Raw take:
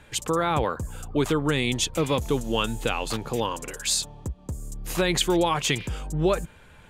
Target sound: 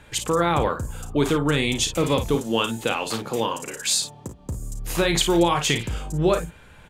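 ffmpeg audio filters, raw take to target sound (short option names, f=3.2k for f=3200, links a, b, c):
-filter_complex "[0:a]asettb=1/sr,asplit=3[a][b][c];[a]atrim=end=2.354[d];[b]atrim=start=2.35:end=4.39,asetpts=PTS-STARTPTS,afade=t=in:d=0.004:c=qsin,afade=t=out:st=2.036:d=0.004:c=qsin,highpass=150[e];[c]atrim=start=4.386[f];[d][e]acrossfade=d=0.004:c1=hsin:c2=qsin[g];[g][f]acrossfade=d=0.004:c1=qsin:c2=hsin,asplit=2[h][i];[i]aecho=0:1:35|53:0.299|0.316[j];[h][j]amix=inputs=2:normalize=0,volume=2dB"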